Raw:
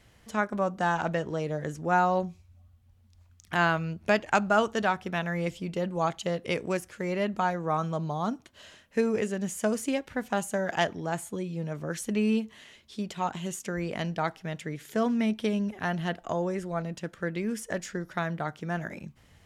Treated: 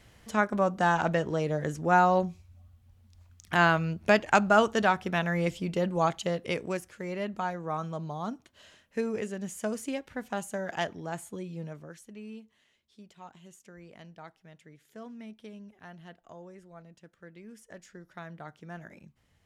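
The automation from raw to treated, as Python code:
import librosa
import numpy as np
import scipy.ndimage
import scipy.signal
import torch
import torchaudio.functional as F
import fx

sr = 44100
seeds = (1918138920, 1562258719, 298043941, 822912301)

y = fx.gain(x, sr, db=fx.line((5.98, 2.0), (7.01, -5.0), (11.65, -5.0), (12.06, -18.0), (17.33, -18.0), (18.52, -11.0)))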